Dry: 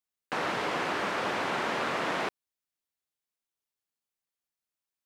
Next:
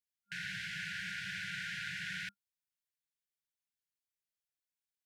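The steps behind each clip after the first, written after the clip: FFT band-reject 200–1400 Hz; trim -5.5 dB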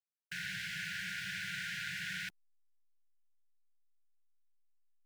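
send-on-delta sampling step -57.5 dBFS; treble shelf 7.2 kHz +7 dB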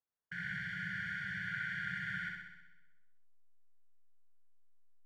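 Savitzky-Golay filter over 41 samples; flutter echo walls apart 10.9 m, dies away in 1 s; trim +2.5 dB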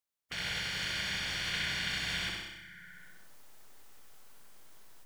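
spectral peaks clipped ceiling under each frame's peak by 30 dB; bit-crushed delay 97 ms, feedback 35%, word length 11-bit, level -7 dB; trim +4.5 dB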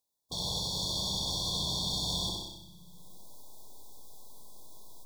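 brick-wall FIR band-stop 1.1–3.3 kHz; trim +6.5 dB

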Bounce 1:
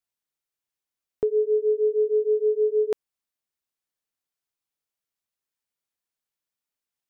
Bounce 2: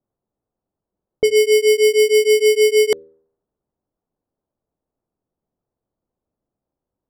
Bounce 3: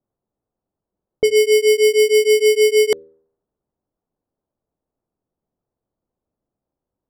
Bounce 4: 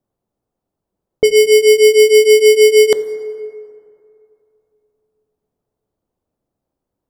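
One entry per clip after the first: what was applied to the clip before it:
sample-and-hold 17×; level-controlled noise filter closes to 580 Hz, open at -19 dBFS; de-hum 79.7 Hz, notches 7; trim +8.5 dB
no audible change
plate-style reverb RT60 2.7 s, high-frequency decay 0.4×, DRR 13 dB; trim +4.5 dB

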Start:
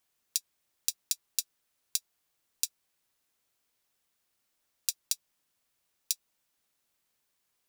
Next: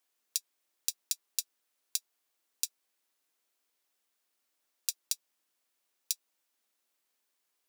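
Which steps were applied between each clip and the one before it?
high-pass 240 Hz 24 dB/octave; trim -2 dB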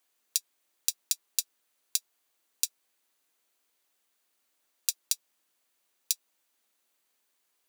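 band-stop 5.3 kHz, Q 17; trim +4.5 dB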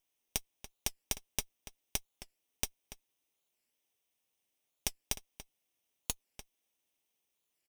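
comb filter that takes the minimum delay 0.35 ms; echo from a far wall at 49 m, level -12 dB; warped record 45 rpm, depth 250 cents; trim -6 dB

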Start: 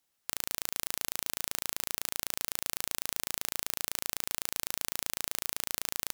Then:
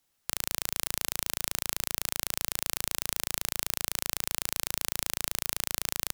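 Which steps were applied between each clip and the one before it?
bass shelf 130 Hz +8 dB; trim +3 dB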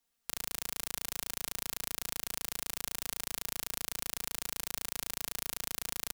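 comb 4.3 ms, depth 84%; trim -8 dB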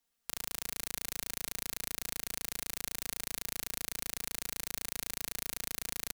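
delay 359 ms -11 dB; trim -1 dB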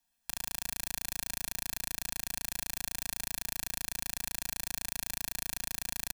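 comb 1.2 ms, depth 69%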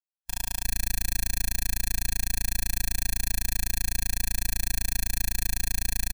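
spectral contrast expander 2.5:1; trim +5 dB

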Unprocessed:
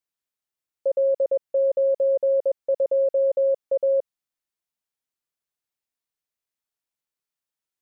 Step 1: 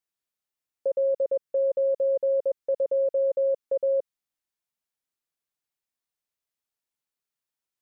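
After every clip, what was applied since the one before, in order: dynamic bell 710 Hz, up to -7 dB, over -38 dBFS, Q 2.8; trim -1 dB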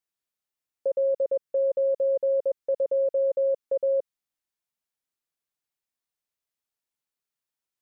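no audible change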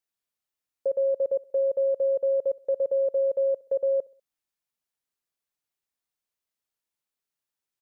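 feedback delay 65 ms, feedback 44%, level -23.5 dB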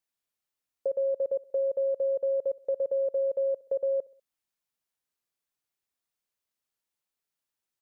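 compression 1.5:1, threshold -31 dBFS, peak gain reduction 3.5 dB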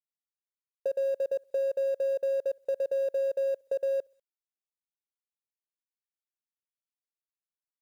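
companding laws mixed up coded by A

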